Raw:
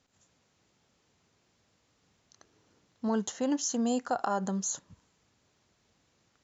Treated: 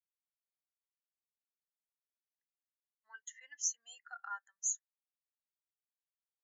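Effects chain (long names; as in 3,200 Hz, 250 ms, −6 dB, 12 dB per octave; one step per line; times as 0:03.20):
high-pass with resonance 2,000 Hz, resonance Q 3.9
every bin expanded away from the loudest bin 2.5 to 1
level −2 dB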